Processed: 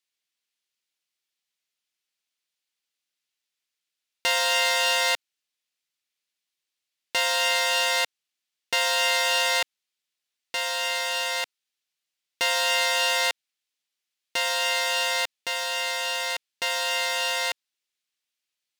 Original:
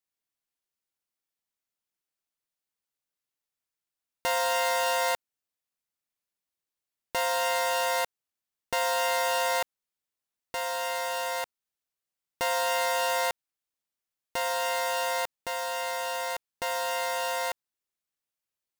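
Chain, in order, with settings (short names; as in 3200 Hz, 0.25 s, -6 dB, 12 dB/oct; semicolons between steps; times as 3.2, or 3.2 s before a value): weighting filter D; gain -1 dB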